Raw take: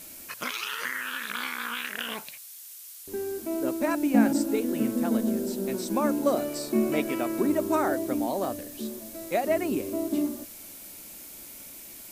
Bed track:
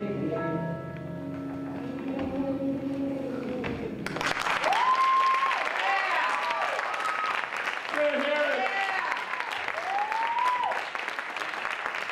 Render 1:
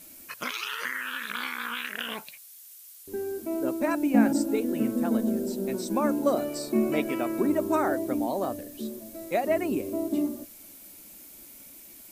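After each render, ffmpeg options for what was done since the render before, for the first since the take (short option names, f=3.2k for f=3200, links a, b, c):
-af "afftdn=nr=6:nf=-45"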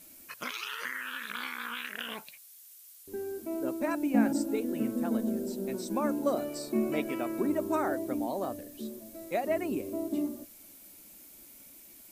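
-af "volume=-4.5dB"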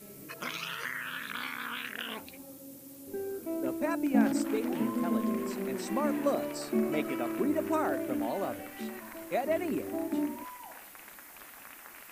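-filter_complex "[1:a]volume=-20dB[a];[0:a][a]amix=inputs=2:normalize=0"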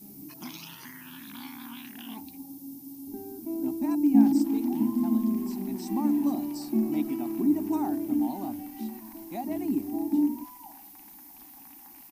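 -af "firequalizer=gain_entry='entry(140,0);entry(290,9);entry(500,-24);entry(800,4);entry(1300,-17);entry(2000,-12);entry(5300,1);entry(7500,-5);entry(14000,5)':delay=0.05:min_phase=1"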